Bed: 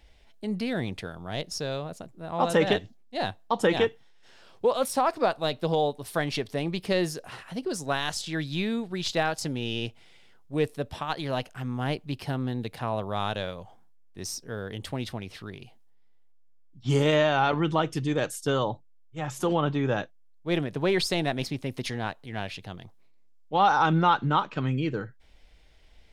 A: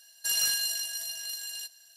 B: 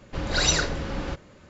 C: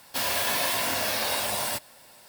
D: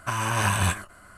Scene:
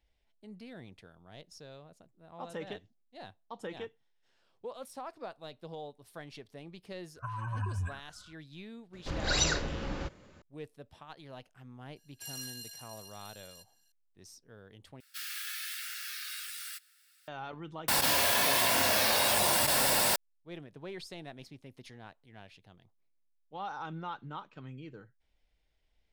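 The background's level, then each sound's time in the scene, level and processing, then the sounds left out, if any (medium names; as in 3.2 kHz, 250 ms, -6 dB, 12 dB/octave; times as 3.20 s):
bed -18.5 dB
7.16 s: add D -10.5 dB + spectral contrast enhancement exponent 2.3
8.93 s: add B -6 dB
11.96 s: add A -16 dB
15.00 s: replace with C -12 dB + brick-wall FIR high-pass 1.2 kHz
17.88 s: add C -1.5 dB + level flattener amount 100%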